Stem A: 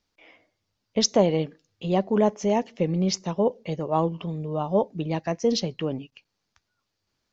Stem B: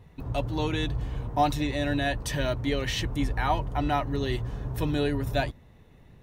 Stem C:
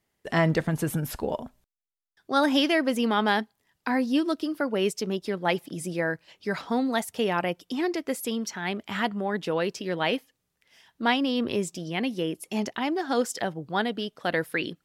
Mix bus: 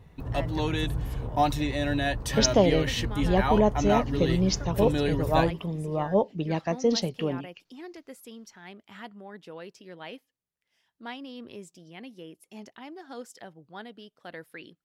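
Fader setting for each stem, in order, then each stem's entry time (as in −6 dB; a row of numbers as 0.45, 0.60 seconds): −1.0, 0.0, −15.5 decibels; 1.40, 0.00, 0.00 seconds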